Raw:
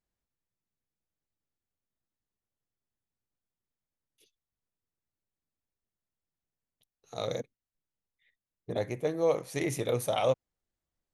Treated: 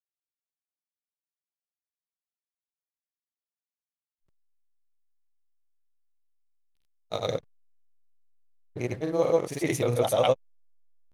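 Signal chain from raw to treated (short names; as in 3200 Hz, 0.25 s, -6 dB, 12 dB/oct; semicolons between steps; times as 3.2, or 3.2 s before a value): backlash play -48.5 dBFS; grains 0.1 s, grains 20/s, pitch spread up and down by 0 st; gain +6 dB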